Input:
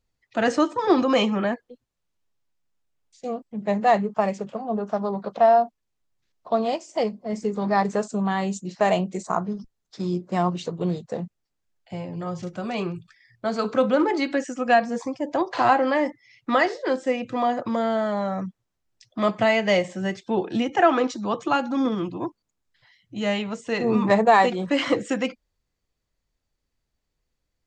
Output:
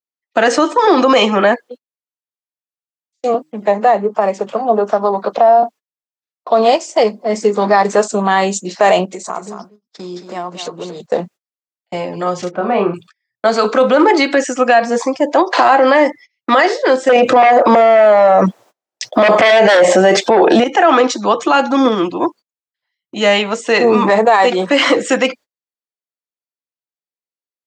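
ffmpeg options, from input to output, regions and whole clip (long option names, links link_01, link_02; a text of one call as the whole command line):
ffmpeg -i in.wav -filter_complex "[0:a]asettb=1/sr,asplit=3[link_01][link_02][link_03];[link_01]atrim=end=3.344[link_04];[link_02]atrim=start=3.34:end=5.63,asetpts=PTS-STARTPTS,afade=type=in:duration=0.004:curve=qsin,afade=type=out:start_time=2.286:duration=0.004:curve=qsin,bandreject=frequency=155.5:width_type=h:width=4,bandreject=frequency=311:width_type=h:width=4,acrossover=split=220|1300[link_05][link_06][link_07];[link_05]acompressor=threshold=-41dB:ratio=4[link_08];[link_06]acompressor=threshold=-22dB:ratio=4[link_09];[link_07]acompressor=threshold=-47dB:ratio=4[link_10];[link_08][link_09][link_10]amix=inputs=3:normalize=0,aphaser=in_gain=1:out_gain=1:delay=1.2:decay=0.2:speed=1.4:type=triangular[link_11];[link_03]atrim=start=5.626[link_12];[link_04][link_11]acrossfade=duration=0.004:curve1=hsin:curve2=qsin[link_13];[link_13][link_12]acrossfade=duration=0.004:curve1=qsin:curve2=hsin,asettb=1/sr,asplit=3[link_14][link_15][link_16];[link_14]atrim=end=9.054[link_17];[link_15]atrim=start=9.05:end=11,asetpts=PTS-STARTPTS,afade=type=in:duration=0.004:curve=qsin,afade=type=out:start_time=1.946:duration=0.004:curve=qsin,acompressor=threshold=-38dB:ratio=3:attack=3.2:release=140:knee=1:detection=peak,aecho=1:1:229:0.355,atrim=end_sample=85995[link_18];[link_16]atrim=start=10.996[link_19];[link_17][link_18]acrossfade=duration=0.004:curve1=hsin:curve2=qsin[link_20];[link_20][link_19]acrossfade=duration=0.004:curve1=qsin:curve2=hsin,asettb=1/sr,asplit=3[link_21][link_22][link_23];[link_21]atrim=end=12.514[link_24];[link_22]atrim=start=12.51:end=12.94,asetpts=PTS-STARTPTS,afade=type=in:duration=0.004:curve=qsin,afade=type=out:start_time=0.426:duration=0.004:curve=qsin,lowpass=1400,asplit=2[link_25][link_26];[link_26]adelay=30,volume=-4.5dB[link_27];[link_25][link_27]amix=inputs=2:normalize=0,atrim=end_sample=18963[link_28];[link_23]atrim=start=12.936[link_29];[link_24][link_28]acrossfade=duration=0.004:curve1=hsin:curve2=qsin[link_30];[link_30][link_29]acrossfade=duration=0.004:curve1=qsin:curve2=hsin,asettb=1/sr,asplit=3[link_31][link_32][link_33];[link_31]atrim=end=17.094[link_34];[link_32]atrim=start=17.09:end=20.64,asetpts=PTS-STARTPTS,afade=type=in:duration=0.004:curve=qsin,afade=type=out:start_time=3.546:duration=0.004:curve=qsin,equalizer=frequency=640:width=0.91:gain=11,aeval=exprs='0.891*sin(PI/2*2.82*val(0)/0.891)':channel_layout=same[link_35];[link_33]atrim=start=20.636[link_36];[link_34][link_35]acrossfade=duration=0.004:curve1=hsin:curve2=qsin[link_37];[link_37][link_36]acrossfade=duration=0.004:curve1=qsin:curve2=hsin,agate=range=-34dB:threshold=-44dB:ratio=16:detection=peak,highpass=360,alimiter=level_in=17dB:limit=-1dB:release=50:level=0:latency=1,volume=-1dB" out.wav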